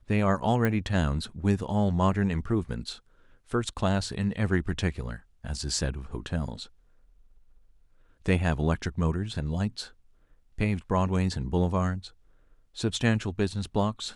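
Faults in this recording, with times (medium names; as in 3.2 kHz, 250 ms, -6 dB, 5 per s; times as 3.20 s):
0.65 s: pop -14 dBFS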